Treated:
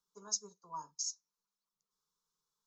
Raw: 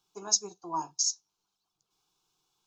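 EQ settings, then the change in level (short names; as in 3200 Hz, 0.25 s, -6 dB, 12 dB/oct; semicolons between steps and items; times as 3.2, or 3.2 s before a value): fixed phaser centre 500 Hz, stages 8; -8.5 dB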